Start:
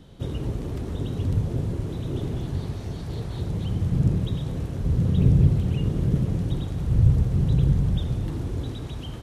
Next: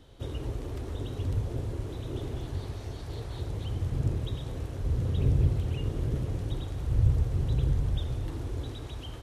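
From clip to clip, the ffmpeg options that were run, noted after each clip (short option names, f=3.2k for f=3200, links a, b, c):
-af "equalizer=f=180:w=1.8:g=-13.5,volume=-3dB"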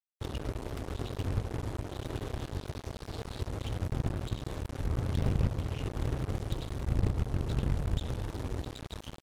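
-af "acompressor=threshold=-31dB:ratio=2,aeval=exprs='0.1*(cos(1*acos(clip(val(0)/0.1,-1,1)))-cos(1*PI/2))+0.0398*(cos(4*acos(clip(val(0)/0.1,-1,1)))-cos(4*PI/2))+0.02*(cos(6*acos(clip(val(0)/0.1,-1,1)))-cos(6*PI/2))+0.00562*(cos(7*acos(clip(val(0)/0.1,-1,1)))-cos(7*PI/2))':c=same,acrusher=bits=5:mix=0:aa=0.5"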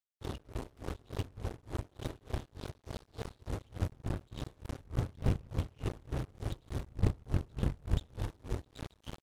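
-af "aeval=exprs='val(0)*pow(10,-30*(0.5-0.5*cos(2*PI*3.4*n/s))/20)':c=same,volume=2dB"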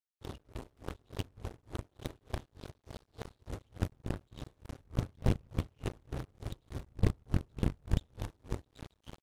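-af "aeval=exprs='0.188*(cos(1*acos(clip(val(0)/0.188,-1,1)))-cos(1*PI/2))+0.0168*(cos(7*acos(clip(val(0)/0.188,-1,1)))-cos(7*PI/2))':c=same,volume=1.5dB"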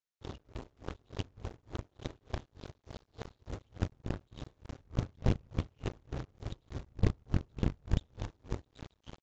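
-af "aresample=16000,aresample=44100"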